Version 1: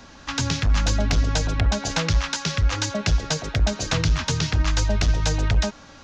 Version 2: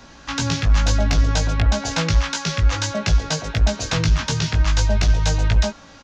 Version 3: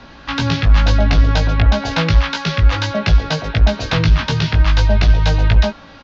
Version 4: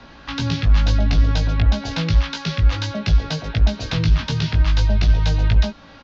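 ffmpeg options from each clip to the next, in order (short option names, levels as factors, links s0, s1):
-filter_complex "[0:a]asplit=2[s0][s1];[s1]adelay=18,volume=0.631[s2];[s0][s2]amix=inputs=2:normalize=0"
-af "lowpass=f=4400:w=0.5412,lowpass=f=4400:w=1.3066,volume=1.78"
-filter_complex "[0:a]acrossover=split=360|3000[s0][s1][s2];[s1]acompressor=threshold=0.0316:ratio=2.5[s3];[s0][s3][s2]amix=inputs=3:normalize=0,volume=0.668"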